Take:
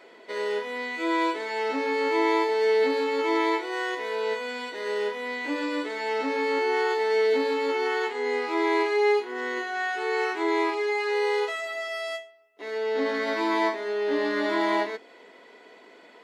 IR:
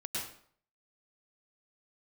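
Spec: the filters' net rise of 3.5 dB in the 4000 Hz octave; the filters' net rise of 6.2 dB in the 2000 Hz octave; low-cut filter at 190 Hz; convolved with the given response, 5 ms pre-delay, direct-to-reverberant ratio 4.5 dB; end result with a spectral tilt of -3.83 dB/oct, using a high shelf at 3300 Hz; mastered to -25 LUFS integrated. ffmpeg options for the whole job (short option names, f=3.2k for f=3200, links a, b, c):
-filter_complex "[0:a]highpass=190,equalizer=f=2k:t=o:g=7.5,highshelf=f=3.3k:g=-7,equalizer=f=4k:t=o:g=6.5,asplit=2[a][b];[1:a]atrim=start_sample=2205,adelay=5[c];[b][c]afir=irnorm=-1:irlink=0,volume=-7dB[d];[a][d]amix=inputs=2:normalize=0,volume=-2.5dB"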